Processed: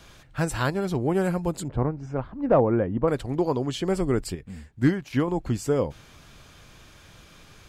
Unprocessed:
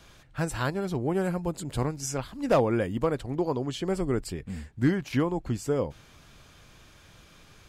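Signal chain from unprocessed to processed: 1.68–3.08 LPF 1200 Hz 12 dB/oct; 4.35–5.28 upward expander 1.5:1, over -32 dBFS; gain +3.5 dB

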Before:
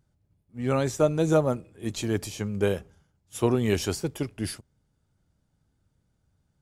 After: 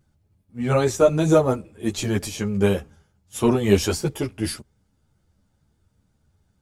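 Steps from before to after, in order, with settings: ensemble effect; gain +8.5 dB

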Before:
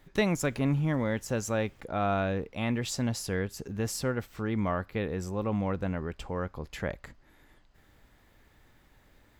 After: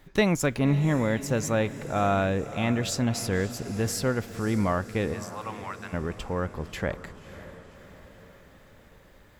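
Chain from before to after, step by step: 5.13–5.92 HPF 580 Hz -> 1200 Hz 24 dB/oct; diffused feedback echo 0.563 s, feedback 58%, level -14 dB; gain +4 dB

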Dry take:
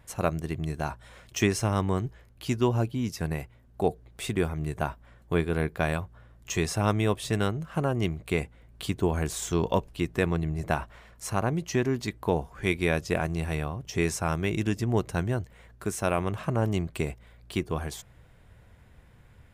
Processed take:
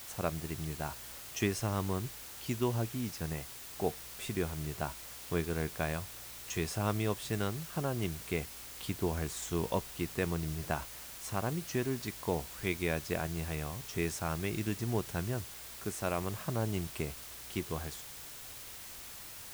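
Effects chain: added noise white -40 dBFS; gain -7.5 dB

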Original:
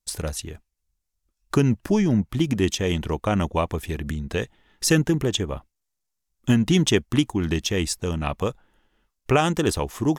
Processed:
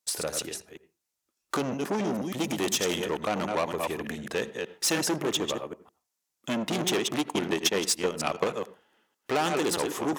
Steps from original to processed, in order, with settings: reverse delay 0.155 s, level -7.5 dB; 2.14–3.05 high shelf 4900 Hz +9.5 dB; soft clip -23.5 dBFS, distortion -7 dB; HPF 300 Hz 12 dB/oct; 7.19–8.44 transient shaper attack +7 dB, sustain -12 dB; on a send: reverb RT60 0.25 s, pre-delay 77 ms, DRR 18 dB; on the sum: gain +2.5 dB

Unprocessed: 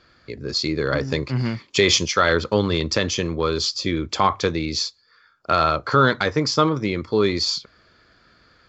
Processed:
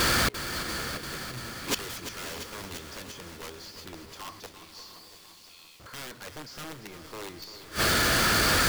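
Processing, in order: zero-crossing step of -20.5 dBFS; 4.46–5.8 steep high-pass 2400 Hz; in parallel at +0.5 dB: level quantiser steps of 18 dB; on the sum: wrapped overs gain 6.5 dB; flipped gate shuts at -20 dBFS, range -28 dB; diffused feedback echo 0.589 s, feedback 40%, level -11 dB; lo-fi delay 0.343 s, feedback 80%, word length 9-bit, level -10.5 dB

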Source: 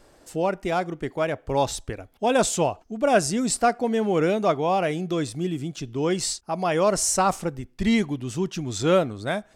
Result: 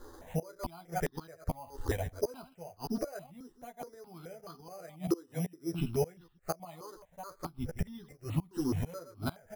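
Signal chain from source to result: reverse delay 0.11 s, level -11 dB; flipped gate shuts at -18 dBFS, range -29 dB; air absorption 170 m; doubler 12 ms -3 dB; in parallel at -1.5 dB: compressor, threshold -35 dBFS, peak gain reduction 14 dB; on the sum: careless resampling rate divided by 8×, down filtered, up hold; 5.07–5.73 HPF 210 Hz 12 dB/oct; step phaser 4.7 Hz 640–2200 Hz

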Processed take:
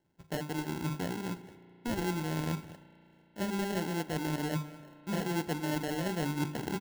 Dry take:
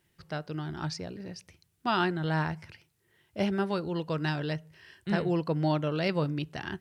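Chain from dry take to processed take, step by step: G.711 law mismatch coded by A; steep low-pass 4100 Hz 48 dB/oct; bell 260 Hz +13 dB 2.1 oct; notches 50/100/150/200/250/300/350/400 Hz; reverse; compressor 5:1, threshold -31 dBFS, peak gain reduction 14.5 dB; reverse; sample-rate reducer 1200 Hz, jitter 0%; echo 0.207 s -19 dB; on a send at -16.5 dB: reverb RT60 3.6 s, pre-delay 34 ms

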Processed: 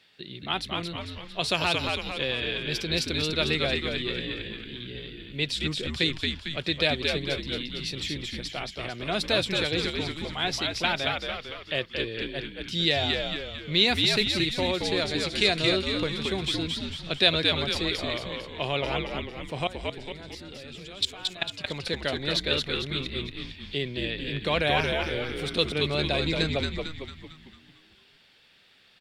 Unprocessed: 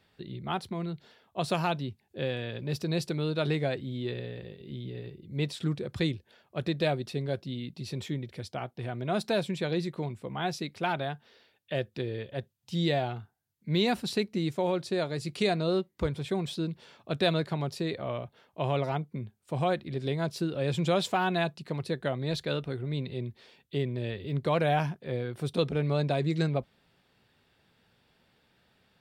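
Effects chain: weighting filter D; 19.67–21.58 level quantiser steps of 22 dB; frequency-shifting echo 0.225 s, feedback 50%, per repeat -78 Hz, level -3.5 dB

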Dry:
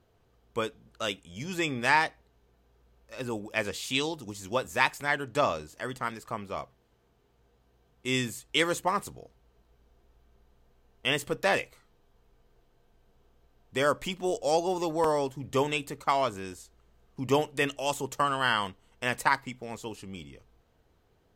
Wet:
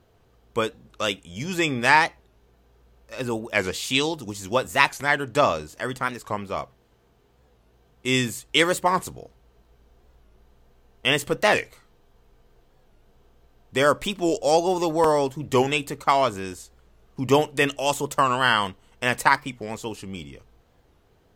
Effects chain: record warp 45 rpm, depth 160 cents; gain +6.5 dB

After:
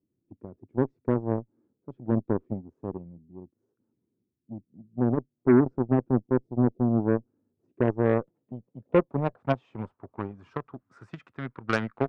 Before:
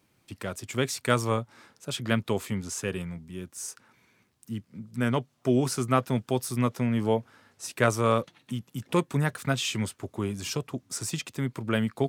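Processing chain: spectral repair 6.26–7.05, 740–2600 Hz before; low-pass sweep 330 Hz -> 1400 Hz, 7.66–10.85; added harmonics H 7 -19 dB, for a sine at -9 dBFS

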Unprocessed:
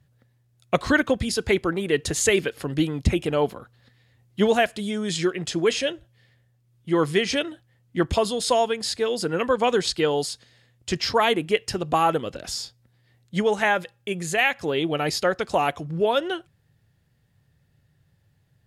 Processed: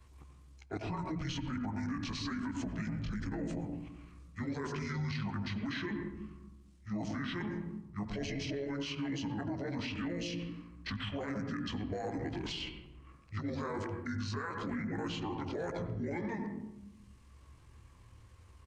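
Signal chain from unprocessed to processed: short-time reversal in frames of 35 ms; notches 60/120/180/240/300/360/420/480/540 Hz; reverse; compressor 16:1, threshold -30 dBFS, peak gain reduction 14.5 dB; reverse; pitch shift -8.5 st; on a send at -8 dB: bell 5900 Hz -14 dB 1.2 oct + reverb RT60 0.75 s, pre-delay 77 ms; on the sum: limiter -29.5 dBFS, peak gain reduction 10.5 dB; three-band squash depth 40%

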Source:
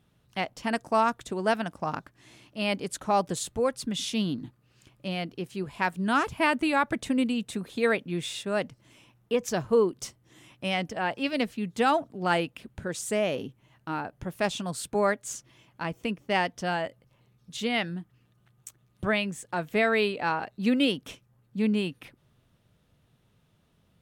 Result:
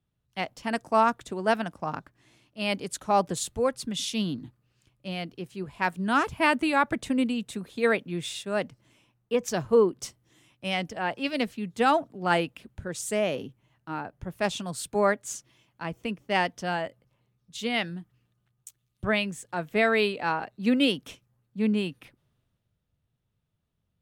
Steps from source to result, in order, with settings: three-band expander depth 40%

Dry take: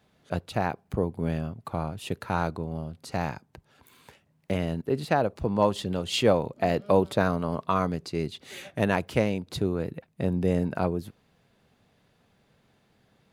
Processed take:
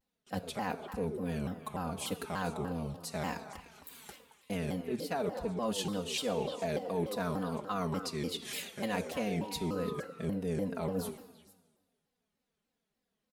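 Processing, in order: gate with hold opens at -52 dBFS; high shelf 5300 Hz +12 dB; comb 4.3 ms, depth 93%; reverse; compressor 4:1, threshold -30 dBFS, peak gain reduction 15 dB; reverse; painted sound rise, 8.81–10.04, 470–1500 Hz -45 dBFS; on a send: delay with a stepping band-pass 0.113 s, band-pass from 400 Hz, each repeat 1.4 oct, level -5 dB; on the sum: plate-style reverb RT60 1.4 s, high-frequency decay 0.95×, DRR 11 dB; shaped vibrato saw down 3.4 Hz, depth 250 cents; gain -3 dB

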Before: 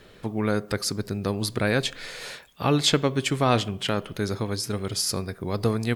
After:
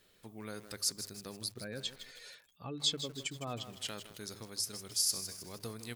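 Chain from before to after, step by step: 1.44–3.7 spectral contrast raised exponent 1.7; pre-emphasis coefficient 0.8; notches 50/100/150 Hz; dynamic EQ 5800 Hz, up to +5 dB, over -45 dBFS, Q 0.71; lo-fi delay 0.158 s, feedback 55%, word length 7-bit, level -10 dB; gain -6.5 dB

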